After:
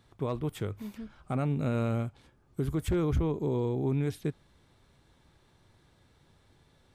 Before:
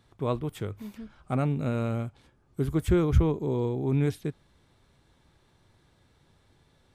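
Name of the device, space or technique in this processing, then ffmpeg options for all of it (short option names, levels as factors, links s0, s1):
clipper into limiter: -af "asoftclip=type=hard:threshold=0.15,alimiter=limit=0.0794:level=0:latency=1:release=95"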